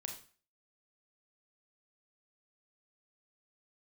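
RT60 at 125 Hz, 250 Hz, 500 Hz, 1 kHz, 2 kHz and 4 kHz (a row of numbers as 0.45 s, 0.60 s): 0.40 s, 0.40 s, 0.40 s, 0.40 s, 0.40 s, 0.40 s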